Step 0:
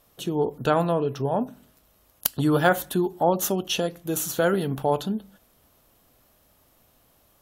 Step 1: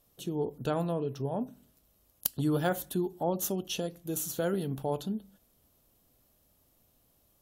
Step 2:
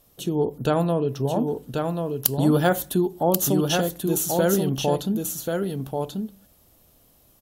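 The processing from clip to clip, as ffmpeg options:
ffmpeg -i in.wav -af "equalizer=frequency=1400:width=0.5:gain=-8,volume=-5.5dB" out.wav
ffmpeg -i in.wav -af "aecho=1:1:1086:0.596,volume=9dB" out.wav

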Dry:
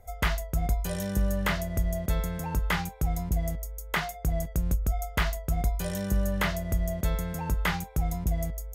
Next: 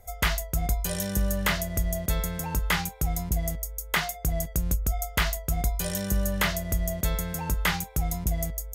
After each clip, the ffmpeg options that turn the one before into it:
ffmpeg -i in.wav -af "highshelf=frequency=2600:gain=8.5" out.wav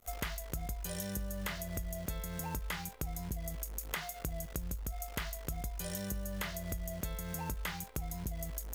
ffmpeg -i in.wav -af "acrusher=bits=8:dc=4:mix=0:aa=0.000001,acompressor=threshold=-33dB:ratio=12,volume=-2dB" out.wav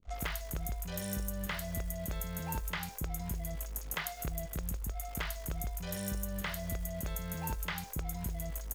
ffmpeg -i in.wav -filter_complex "[0:a]acrossover=split=350|5900[link_01][link_02][link_03];[link_02]adelay=30[link_04];[link_03]adelay=130[link_05];[link_01][link_04][link_05]amix=inputs=3:normalize=0,volume=2dB" out.wav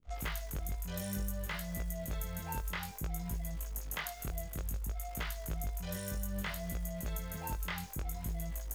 ffmpeg -i in.wav -af "flanger=delay=17:depth=5.3:speed=0.58,volume=1dB" out.wav

